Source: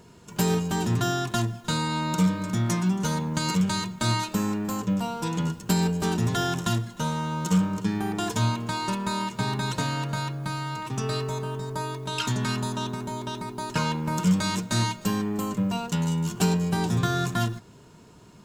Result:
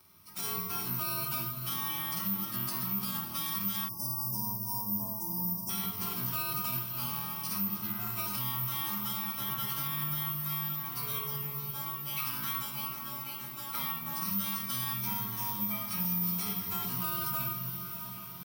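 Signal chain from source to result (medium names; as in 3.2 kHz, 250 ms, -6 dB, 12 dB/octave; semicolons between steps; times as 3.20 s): frequency axis rescaled in octaves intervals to 91%; peaking EQ 1.1 kHz +12 dB 0.35 oct; pitch shift +0.5 st; reverse; upward compressor, threshold -42 dBFS; reverse; amplifier tone stack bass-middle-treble 5-5-5; simulated room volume 1900 m³, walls furnished, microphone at 2.9 m; careless resampling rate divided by 3×, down filtered, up zero stuff; echo that smears into a reverb 654 ms, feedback 71%, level -12.5 dB; peak limiter -20.5 dBFS, peak gain reduction 7.5 dB; spectral selection erased 3.88–5.70 s, 1.1–4.8 kHz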